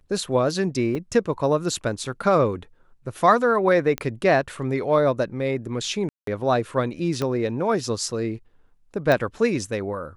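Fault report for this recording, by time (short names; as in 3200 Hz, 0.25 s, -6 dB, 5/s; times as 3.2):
0.95 gap 3.6 ms
3.98 pop -12 dBFS
6.09–6.27 gap 0.183 s
7.22 pop -13 dBFS
9.12 pop -10 dBFS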